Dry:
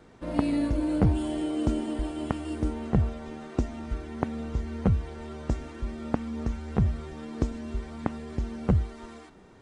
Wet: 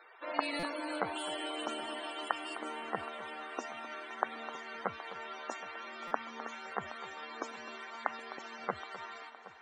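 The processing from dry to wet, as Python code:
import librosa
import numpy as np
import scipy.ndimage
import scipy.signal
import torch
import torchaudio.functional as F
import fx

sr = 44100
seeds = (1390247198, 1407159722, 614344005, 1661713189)

y = fx.dead_time(x, sr, dead_ms=0.061)
y = scipy.signal.sosfilt(scipy.signal.butter(2, 1100.0, 'highpass', fs=sr, output='sos'), y)
y = fx.spec_topn(y, sr, count=64)
y = fx.echo_alternate(y, sr, ms=257, hz=1800.0, feedback_pct=81, wet_db=-13.5)
y = fx.buffer_glitch(y, sr, at_s=(0.59, 6.07), block=256, repeats=6)
y = y * librosa.db_to_amplitude(7.0)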